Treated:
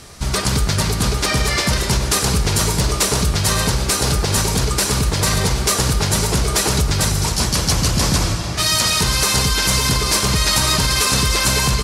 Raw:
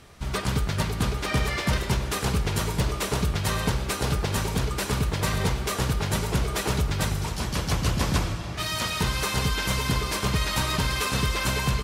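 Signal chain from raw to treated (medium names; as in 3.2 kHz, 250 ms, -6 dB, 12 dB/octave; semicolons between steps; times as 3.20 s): peak limiter -18 dBFS, peak gain reduction 5.5 dB; high-order bell 7 kHz +8 dB; trim +9 dB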